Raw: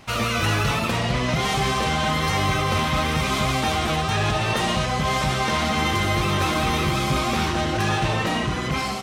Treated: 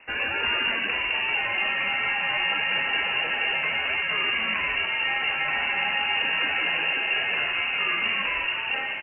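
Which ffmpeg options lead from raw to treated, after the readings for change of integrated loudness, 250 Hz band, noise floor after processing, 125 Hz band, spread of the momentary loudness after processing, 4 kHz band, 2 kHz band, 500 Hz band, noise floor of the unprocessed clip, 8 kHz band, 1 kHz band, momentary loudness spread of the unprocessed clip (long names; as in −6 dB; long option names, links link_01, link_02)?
−1.5 dB, −18.0 dB, −30 dBFS, −26.0 dB, 1 LU, 0.0 dB, +3.5 dB, −11.5 dB, −26 dBFS, below −40 dB, −8.5 dB, 2 LU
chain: -filter_complex "[0:a]lowpass=frequency=2500:width_type=q:width=0.5098,lowpass=frequency=2500:width_type=q:width=0.6013,lowpass=frequency=2500:width_type=q:width=0.9,lowpass=frequency=2500:width_type=q:width=2.563,afreqshift=-2900,asplit=7[link_01][link_02][link_03][link_04][link_05][link_06][link_07];[link_02]adelay=184,afreqshift=66,volume=-13.5dB[link_08];[link_03]adelay=368,afreqshift=132,volume=-18.5dB[link_09];[link_04]adelay=552,afreqshift=198,volume=-23.6dB[link_10];[link_05]adelay=736,afreqshift=264,volume=-28.6dB[link_11];[link_06]adelay=920,afreqshift=330,volume=-33.6dB[link_12];[link_07]adelay=1104,afreqshift=396,volume=-38.7dB[link_13];[link_01][link_08][link_09][link_10][link_11][link_12][link_13]amix=inputs=7:normalize=0,volume=-3.5dB"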